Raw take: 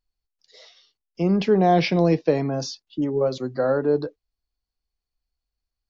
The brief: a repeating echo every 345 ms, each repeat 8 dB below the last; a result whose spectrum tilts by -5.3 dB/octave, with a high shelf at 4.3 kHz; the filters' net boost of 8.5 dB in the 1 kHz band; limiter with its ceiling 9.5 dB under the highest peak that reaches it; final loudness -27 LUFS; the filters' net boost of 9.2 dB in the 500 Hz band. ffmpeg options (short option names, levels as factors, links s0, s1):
-af "equalizer=f=500:t=o:g=9,equalizer=f=1000:t=o:g=8.5,highshelf=f=4300:g=-9,alimiter=limit=0.398:level=0:latency=1,aecho=1:1:345|690|1035|1380|1725:0.398|0.159|0.0637|0.0255|0.0102,volume=0.355"